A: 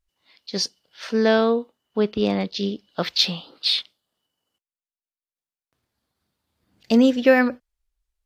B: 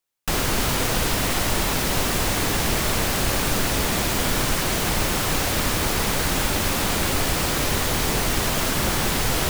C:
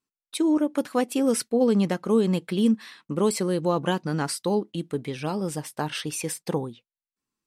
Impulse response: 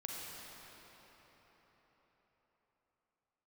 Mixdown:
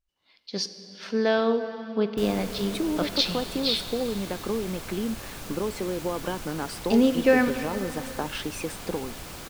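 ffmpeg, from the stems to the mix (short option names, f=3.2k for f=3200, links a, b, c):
-filter_complex "[0:a]highshelf=f=8.1k:g=-5.5,volume=-6.5dB,asplit=2[a][b];[b]volume=-5.5dB[c];[1:a]adelay=1900,volume=-17dB[d];[2:a]lowpass=f=2.2k:p=1,acompressor=threshold=-28dB:ratio=6,highpass=220,adelay=2400,volume=3dB[e];[3:a]atrim=start_sample=2205[f];[c][f]afir=irnorm=-1:irlink=0[g];[a][d][e][g]amix=inputs=4:normalize=0,bandreject=f=1.9k:w=24"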